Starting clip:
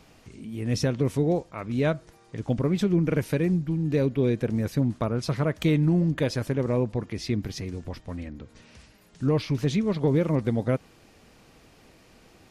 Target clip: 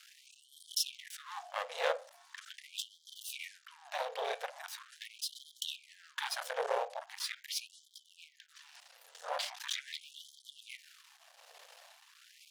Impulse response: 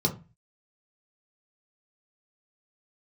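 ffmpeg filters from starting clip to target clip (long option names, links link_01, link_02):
-filter_complex "[0:a]afreqshift=-85,aeval=exprs='max(val(0),0)':channel_layout=same,asplit=2[link_01][link_02];[link_02]highshelf=frequency=4700:gain=-8.5[link_03];[1:a]atrim=start_sample=2205,asetrate=26019,aresample=44100[link_04];[link_03][link_04]afir=irnorm=-1:irlink=0,volume=-20.5dB[link_05];[link_01][link_05]amix=inputs=2:normalize=0,tremolo=f=1.2:d=0.39,alimiter=limit=-18.5dB:level=0:latency=1:release=35,equalizer=frequency=390:width_type=o:width=0.92:gain=-5.5,bandreject=frequency=50:width_type=h:width=6,bandreject=frequency=100:width_type=h:width=6,bandreject=frequency=150:width_type=h:width=6,bandreject=frequency=200:width_type=h:width=6,bandreject=frequency=250:width_type=h:width=6,bandreject=frequency=300:width_type=h:width=6,bandreject=frequency=350:width_type=h:width=6,bandreject=frequency=400:width_type=h:width=6,bandreject=frequency=450:width_type=h:width=6,bandreject=frequency=500:width_type=h:width=6,afftfilt=real='re*gte(b*sr/1024,420*pow(3100/420,0.5+0.5*sin(2*PI*0.41*pts/sr)))':imag='im*gte(b*sr/1024,420*pow(3100/420,0.5+0.5*sin(2*PI*0.41*pts/sr)))':win_size=1024:overlap=0.75,volume=7dB"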